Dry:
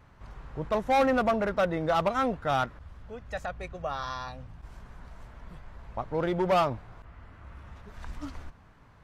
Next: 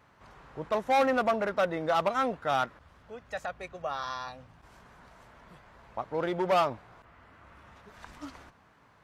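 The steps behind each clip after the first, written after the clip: high-pass 310 Hz 6 dB/octave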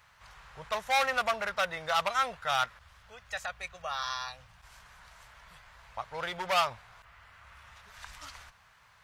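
amplifier tone stack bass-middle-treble 10-0-10; trim +8.5 dB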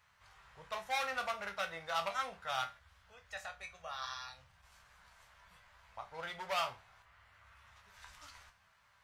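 chord resonator C2 major, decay 0.26 s; trim +1.5 dB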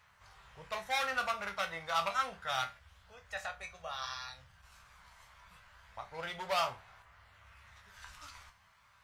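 phaser 0.29 Hz, delay 1 ms, feedback 24%; trim +3 dB

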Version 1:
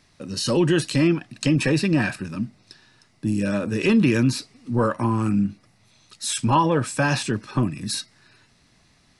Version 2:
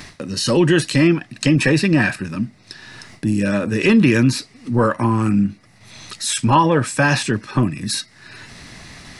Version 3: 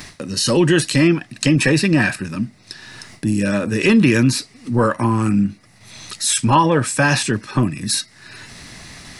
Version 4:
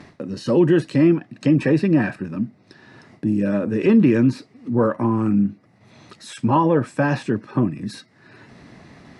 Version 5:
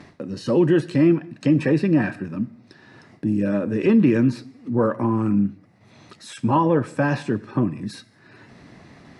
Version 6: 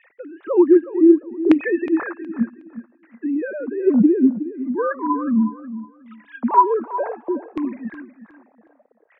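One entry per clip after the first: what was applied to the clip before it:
gate with hold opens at -49 dBFS; peaking EQ 1.9 kHz +5 dB 0.49 oct; upward compressor, threshold -29 dBFS; trim +4.5 dB
treble shelf 6.5 kHz +7 dB
band-pass filter 340 Hz, Q 0.58
reverberation, pre-delay 5 ms, DRR 17.5 dB; trim -1.5 dB
formants replaced by sine waves; LFO low-pass saw down 0.66 Hz 420–2400 Hz; feedback delay 366 ms, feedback 24%, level -13.5 dB

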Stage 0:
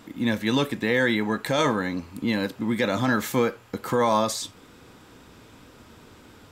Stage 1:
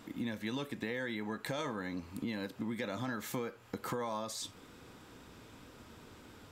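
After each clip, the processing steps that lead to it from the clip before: compression, threshold -30 dBFS, peak gain reduction 12.5 dB; trim -5 dB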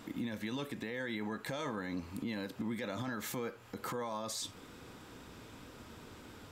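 peak limiter -32 dBFS, peak gain reduction 9 dB; trim +2.5 dB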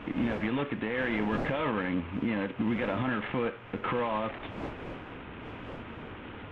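CVSD coder 16 kbps; wind noise 560 Hz -53 dBFS; trim +9 dB

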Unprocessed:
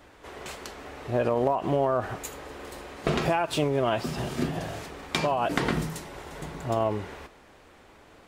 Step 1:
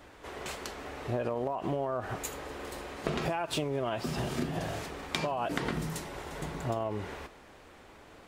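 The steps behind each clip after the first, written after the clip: compression 12:1, threshold -28 dBFS, peak gain reduction 9.5 dB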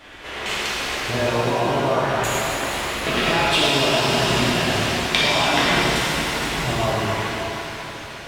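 peaking EQ 2.8 kHz +11 dB 1.9 oct; pitch-shifted reverb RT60 3.3 s, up +7 st, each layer -8 dB, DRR -8 dB; trim +2 dB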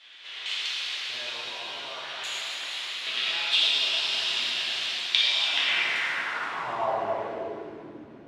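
band-pass sweep 3.6 kHz -> 280 Hz, 5.45–8.02 s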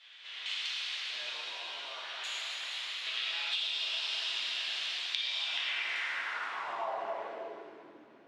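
frequency weighting A; compression, threshold -25 dBFS, peak gain reduction 8.5 dB; trim -6 dB

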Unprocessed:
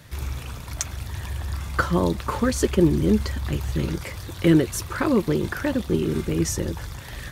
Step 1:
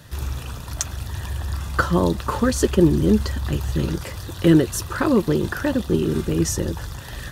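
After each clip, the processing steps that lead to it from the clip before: band-stop 2.2 kHz, Q 5.3; trim +2.5 dB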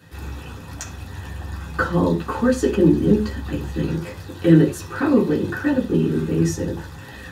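reverberation, pre-delay 3 ms, DRR -5 dB; trim -9.5 dB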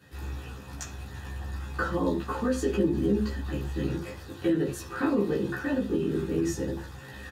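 peak limiter -11 dBFS, peak gain reduction 9.5 dB; doubling 15 ms -2 dB; trim -8 dB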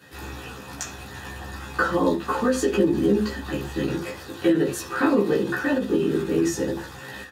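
high-pass 280 Hz 6 dB/octave; endings held to a fixed fall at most 140 dB/s; trim +8.5 dB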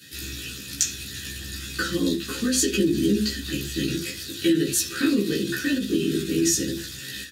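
FFT filter 330 Hz 0 dB, 900 Hz -27 dB, 1.5 kHz -4 dB, 3.9 kHz +11 dB

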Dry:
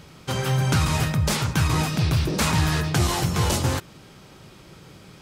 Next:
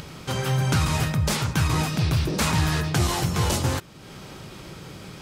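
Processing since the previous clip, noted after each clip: upward compressor, threshold -30 dBFS; trim -1 dB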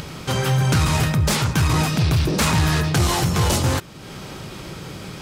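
saturation -17 dBFS, distortion -18 dB; trim +6 dB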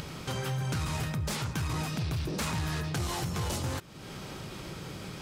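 compression 2:1, threshold -29 dBFS, peak gain reduction 8 dB; trim -6.5 dB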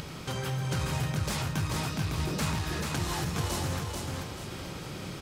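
feedback delay 437 ms, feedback 38%, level -3.5 dB

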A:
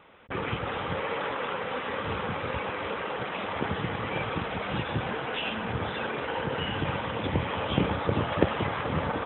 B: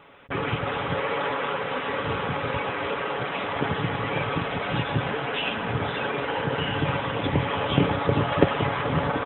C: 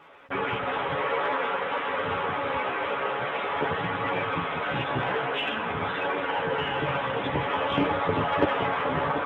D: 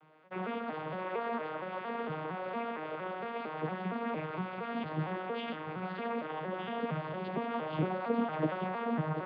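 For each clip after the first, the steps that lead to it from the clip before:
comb 7.1 ms, depth 43%; trim +3.5 dB
crackle 580 per s -55 dBFS; chorus voices 2, 0.49 Hz, delay 13 ms, depth 2.5 ms; overdrive pedal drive 14 dB, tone 1.6 kHz, clips at -6.5 dBFS; trim -2 dB
vocoder on a broken chord minor triad, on D#3, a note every 230 ms; trim -7.5 dB

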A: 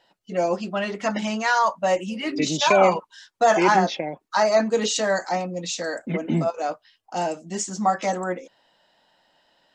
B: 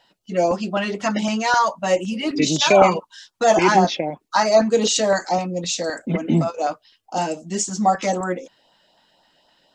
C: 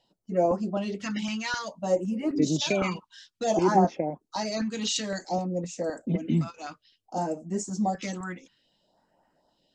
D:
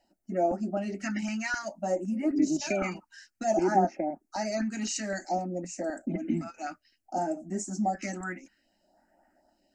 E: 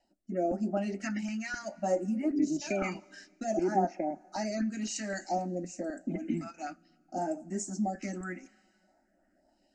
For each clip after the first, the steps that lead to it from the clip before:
peaking EQ 1.8 kHz -2.5 dB; LFO notch saw up 3.9 Hz 340–2500 Hz; trim +5 dB
treble shelf 5.7 kHz -10 dB; phase shifter stages 2, 0.57 Hz, lowest notch 520–3500 Hz; trim -4.5 dB
in parallel at +1 dB: compression, threshold -32 dBFS, peak gain reduction 15.5 dB; on the sum: static phaser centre 700 Hz, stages 8; trim -2.5 dB
two-slope reverb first 0.23 s, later 2.7 s, from -18 dB, DRR 17.5 dB; resampled via 22.05 kHz; rotary cabinet horn 0.9 Hz

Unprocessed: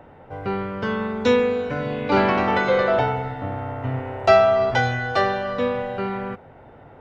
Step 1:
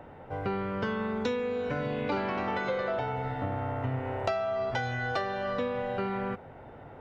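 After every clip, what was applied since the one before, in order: compression 10:1, threshold -26 dBFS, peak gain reduction 16.5 dB; trim -1.5 dB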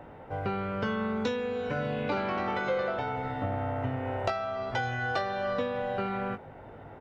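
doubling 19 ms -8 dB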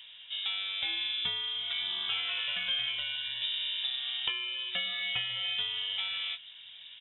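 frequency inversion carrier 3.7 kHz; trim -3 dB

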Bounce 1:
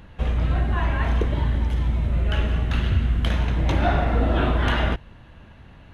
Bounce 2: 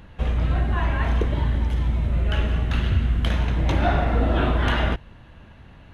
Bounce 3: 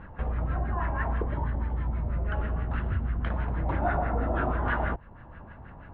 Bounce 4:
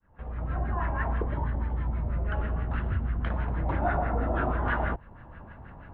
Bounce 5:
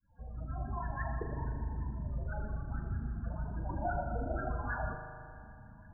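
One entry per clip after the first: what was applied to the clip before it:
no audible change
compression 1.5:1, threshold -40 dBFS, peak gain reduction 9 dB; LFO low-pass sine 6.2 Hz 820–1700 Hz
fade-in on the opening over 0.63 s
loudest bins only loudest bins 16; reverb removal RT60 0.6 s; spring tank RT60 2.3 s, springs 38 ms, chirp 70 ms, DRR 3.5 dB; trim -6.5 dB

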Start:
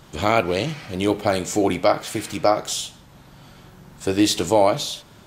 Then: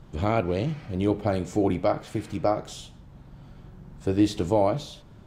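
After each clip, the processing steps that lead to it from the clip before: tilt EQ -3 dB/octave; trim -8 dB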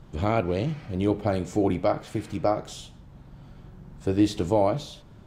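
no audible change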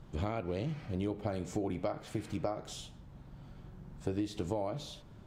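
compression 12:1, threshold -26 dBFS, peak gain reduction 11.5 dB; trim -4.5 dB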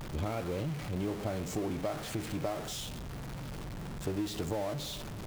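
jump at every zero crossing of -35 dBFS; trim -2 dB

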